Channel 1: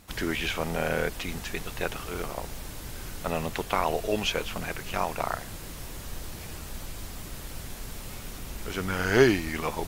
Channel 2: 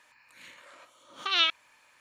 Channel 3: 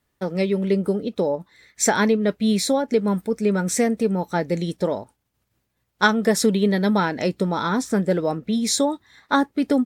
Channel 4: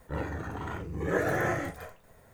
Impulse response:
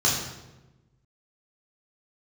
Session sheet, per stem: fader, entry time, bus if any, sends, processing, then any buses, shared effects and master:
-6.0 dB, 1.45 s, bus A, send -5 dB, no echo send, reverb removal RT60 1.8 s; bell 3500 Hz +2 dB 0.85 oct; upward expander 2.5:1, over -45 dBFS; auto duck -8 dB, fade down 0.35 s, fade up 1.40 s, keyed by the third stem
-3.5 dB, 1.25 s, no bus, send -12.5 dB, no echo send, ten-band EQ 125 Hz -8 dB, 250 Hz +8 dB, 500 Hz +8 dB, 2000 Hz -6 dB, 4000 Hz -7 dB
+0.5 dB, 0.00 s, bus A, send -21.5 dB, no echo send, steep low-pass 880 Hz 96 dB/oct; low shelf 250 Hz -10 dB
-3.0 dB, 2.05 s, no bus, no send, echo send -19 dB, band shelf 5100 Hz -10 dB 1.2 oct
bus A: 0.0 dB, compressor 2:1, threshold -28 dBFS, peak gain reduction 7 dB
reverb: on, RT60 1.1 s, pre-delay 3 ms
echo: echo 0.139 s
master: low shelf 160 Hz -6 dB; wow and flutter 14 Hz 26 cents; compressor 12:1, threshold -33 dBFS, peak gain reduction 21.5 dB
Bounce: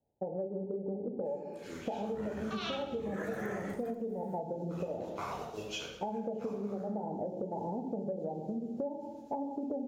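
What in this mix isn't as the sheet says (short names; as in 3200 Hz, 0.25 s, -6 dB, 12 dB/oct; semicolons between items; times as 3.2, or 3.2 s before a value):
stem 1: missing reverb removal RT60 1.8 s; stem 4: missing band shelf 5100 Hz -10 dB 1.2 oct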